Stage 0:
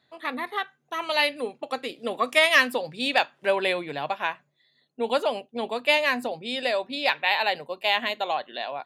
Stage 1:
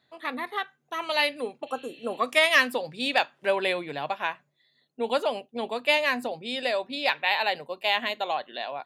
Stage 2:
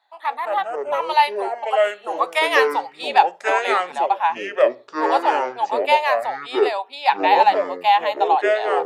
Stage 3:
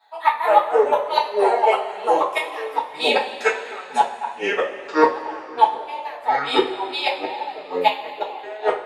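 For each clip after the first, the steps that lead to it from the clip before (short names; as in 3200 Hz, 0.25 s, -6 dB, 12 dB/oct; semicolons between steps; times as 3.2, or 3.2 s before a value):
spectral repair 1.69–2.16, 1700–5500 Hz before; gain -1.5 dB
resonant high-pass 850 Hz, resonance Q 8.8; echoes that change speed 0.115 s, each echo -6 st, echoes 2; gain -1 dB
flipped gate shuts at -12 dBFS, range -26 dB; two-slope reverb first 0.28 s, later 2.8 s, from -19 dB, DRR -9.5 dB; gain -1 dB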